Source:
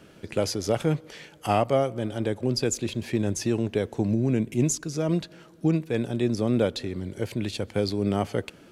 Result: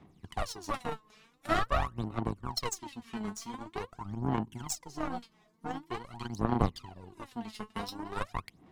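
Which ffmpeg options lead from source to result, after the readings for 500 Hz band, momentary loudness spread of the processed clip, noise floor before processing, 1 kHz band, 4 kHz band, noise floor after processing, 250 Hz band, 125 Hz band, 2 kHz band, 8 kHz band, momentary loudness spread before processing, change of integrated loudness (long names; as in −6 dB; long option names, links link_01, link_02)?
−13.5 dB, 11 LU, −52 dBFS, −2.0 dB, −7.5 dB, −67 dBFS, −11.5 dB, −10.5 dB, −3.5 dB, −9.5 dB, 8 LU, −9.5 dB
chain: -filter_complex "[0:a]acrossover=split=420[link_01][link_02];[link_01]alimiter=level_in=1dB:limit=-24dB:level=0:latency=1:release=283,volume=-1dB[link_03];[link_02]aeval=exprs='val(0)*sin(2*PI*590*n/s)':channel_layout=same[link_04];[link_03][link_04]amix=inputs=2:normalize=0,aeval=exprs='0.237*(cos(1*acos(clip(val(0)/0.237,-1,1)))-cos(1*PI/2))+0.0335*(cos(2*acos(clip(val(0)/0.237,-1,1)))-cos(2*PI/2))+0.00944*(cos(3*acos(clip(val(0)/0.237,-1,1)))-cos(3*PI/2))+0.0211*(cos(7*acos(clip(val(0)/0.237,-1,1)))-cos(7*PI/2))':channel_layout=same,aphaser=in_gain=1:out_gain=1:delay=4.7:decay=0.77:speed=0.46:type=sinusoidal,equalizer=frequency=730:width_type=o:width=0.37:gain=10,volume=-5dB"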